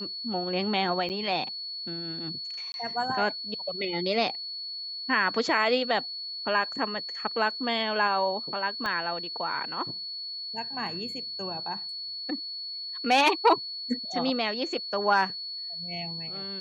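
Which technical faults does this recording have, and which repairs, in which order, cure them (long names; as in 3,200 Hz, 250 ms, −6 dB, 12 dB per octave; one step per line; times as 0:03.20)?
whistle 4,400 Hz −34 dBFS
0:01.09–0:01.10: drop-out 8.7 ms
0:02.72–0:02.74: drop-out 21 ms
0:08.86: click −18 dBFS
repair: click removal
notch filter 4,400 Hz, Q 30
repair the gap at 0:01.09, 8.7 ms
repair the gap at 0:02.72, 21 ms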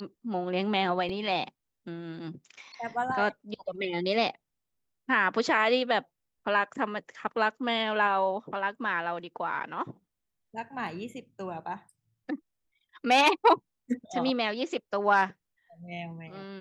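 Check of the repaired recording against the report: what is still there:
0:08.86: click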